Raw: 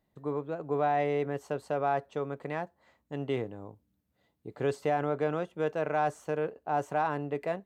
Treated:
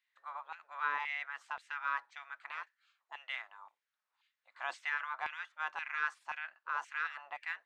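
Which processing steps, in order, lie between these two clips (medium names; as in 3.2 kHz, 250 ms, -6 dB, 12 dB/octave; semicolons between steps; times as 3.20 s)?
distance through air 91 m; spectral gate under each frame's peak -15 dB weak; LFO high-pass saw down 1.9 Hz 870–2300 Hz; trim +1 dB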